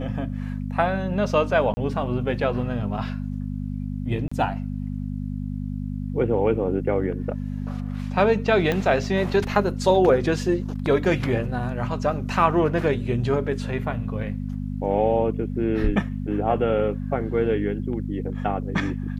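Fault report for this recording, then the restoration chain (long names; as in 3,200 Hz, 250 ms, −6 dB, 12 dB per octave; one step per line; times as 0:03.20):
mains hum 50 Hz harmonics 5 −29 dBFS
0:01.74–0:01.77: drop-out 30 ms
0:04.28–0:04.32: drop-out 35 ms
0:08.72: click −11 dBFS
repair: click removal
hum removal 50 Hz, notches 5
repair the gap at 0:01.74, 30 ms
repair the gap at 0:04.28, 35 ms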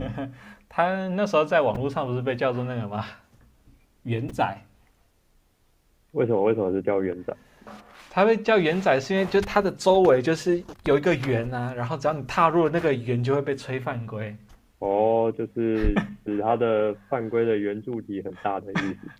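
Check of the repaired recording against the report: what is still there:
0:08.72: click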